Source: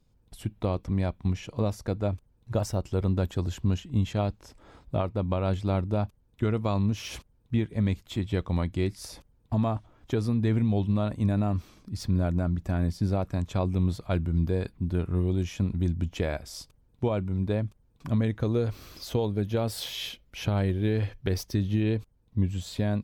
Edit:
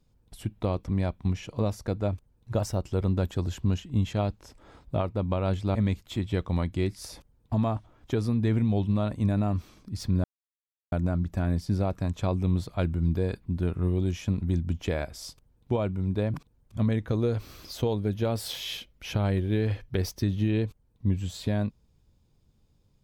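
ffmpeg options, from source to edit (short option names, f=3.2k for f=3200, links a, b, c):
-filter_complex "[0:a]asplit=5[a][b][c][d][e];[a]atrim=end=5.752[f];[b]atrim=start=7.748:end=12.24,asetpts=PTS-STARTPTS,afade=t=out:st=4.488:d=0.004:c=hsin,apad=pad_dur=0.68[g];[c]atrim=start=12.24:end=17.662,asetpts=PTS-STARTPTS,afade=t=in:d=0.004:c=hsin[h];[d]atrim=start=17.658:end=18.092,asetpts=PTS-STARTPTS,areverse[i];[e]atrim=start=18.088[j];[g][h]concat=n=2:v=0:a=1[k];[f][k]acrossfade=d=0.004:c1=hsin:c2=hsin[l];[l][i]acrossfade=d=0.004:c1=hsin:c2=hsin[m];[m][j]acrossfade=d=0.004:c1=hsin:c2=hsin"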